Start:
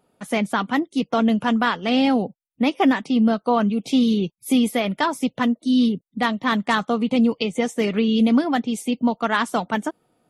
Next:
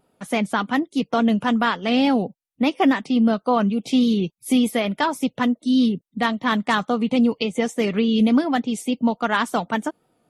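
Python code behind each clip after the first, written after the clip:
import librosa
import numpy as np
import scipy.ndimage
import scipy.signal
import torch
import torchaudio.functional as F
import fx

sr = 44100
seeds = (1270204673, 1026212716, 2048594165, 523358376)

y = fx.vibrato(x, sr, rate_hz=3.5, depth_cents=49.0)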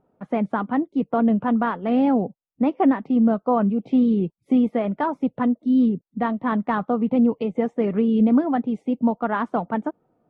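y = scipy.signal.sosfilt(scipy.signal.butter(2, 1100.0, 'lowpass', fs=sr, output='sos'), x)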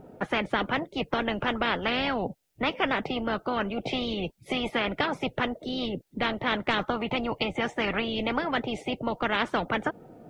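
y = fx.peak_eq(x, sr, hz=1100.0, db=-10.0, octaves=0.49)
y = fx.spectral_comp(y, sr, ratio=4.0)
y = y * librosa.db_to_amplitude(-2.0)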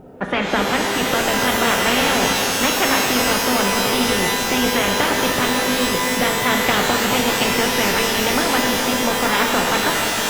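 y = fx.rev_shimmer(x, sr, seeds[0], rt60_s=3.9, semitones=12, shimmer_db=-2, drr_db=0.0)
y = y * librosa.db_to_amplitude(5.5)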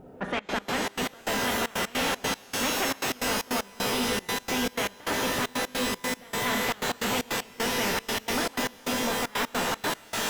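y = fx.step_gate(x, sr, bpm=154, pattern='xxxx.x.xx.x..', floor_db=-24.0, edge_ms=4.5)
y = 10.0 ** (-14.5 / 20.0) * np.tanh(y / 10.0 ** (-14.5 / 20.0))
y = y * librosa.db_to_amplitude(-6.5)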